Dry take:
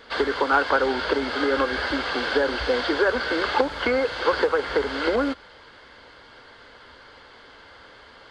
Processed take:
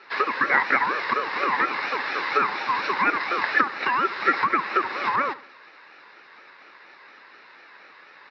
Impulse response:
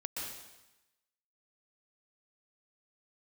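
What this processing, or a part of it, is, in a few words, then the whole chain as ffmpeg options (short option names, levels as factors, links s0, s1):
voice changer toy: -filter_complex "[0:a]equalizer=f=510:w=1.5:g=3.5,aeval=exprs='val(0)*sin(2*PI*670*n/s+670*0.3/4.2*sin(2*PI*4.2*n/s))':c=same,highpass=460,equalizer=f=690:t=q:w=4:g=-7,equalizer=f=1700:t=q:w=4:g=7,equalizer=f=3200:t=q:w=4:g=-7,lowpass=f=4600:w=0.5412,lowpass=f=4600:w=1.3066,asplit=2[s0][s1];[s1]adelay=69,lowpass=f=3200:p=1,volume=0.141,asplit=2[s2][s3];[s3]adelay=69,lowpass=f=3200:p=1,volume=0.44,asplit=2[s4][s5];[s5]adelay=69,lowpass=f=3200:p=1,volume=0.44,asplit=2[s6][s7];[s7]adelay=69,lowpass=f=3200:p=1,volume=0.44[s8];[s0][s2][s4][s6][s8]amix=inputs=5:normalize=0,volume=1.19"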